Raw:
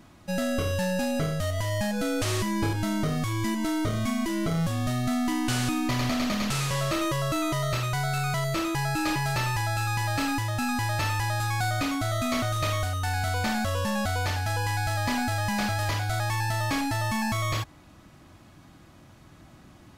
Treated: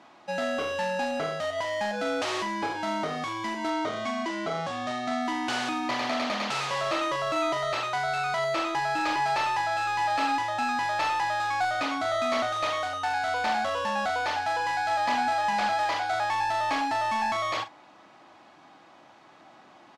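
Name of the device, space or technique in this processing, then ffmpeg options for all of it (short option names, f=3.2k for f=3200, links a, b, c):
intercom: -filter_complex "[0:a]asettb=1/sr,asplit=3[a][b][c];[a]atrim=end=3.704[d];[b]atrim=start=3.7:end=5.22,asetpts=PTS-STARTPTS,afade=t=in:d=0.004:c=qsin,afade=t=out:st=1.516:d=0.004:c=qsin,lowpass=f=9.1k:w=0.5412,lowpass=f=9.1k:w=1.3066[e];[c]atrim=start=5.216[f];[d][e]acrossfade=d=0.004:c1=hsin:c2=qsin[g];[g][f]acrossfade=d=0.004:c1=qsin:c2=hsin,highpass=410,lowpass=4.5k,equalizer=f=820:t=o:w=0.58:g=7,asoftclip=type=tanh:threshold=-21dB,asplit=2[h][i];[i]adelay=44,volume=-11.5dB[j];[h][j]amix=inputs=2:normalize=0,volume=2dB"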